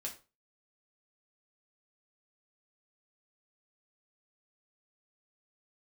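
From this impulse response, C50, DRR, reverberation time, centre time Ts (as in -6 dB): 11.5 dB, -2.0 dB, 0.30 s, 15 ms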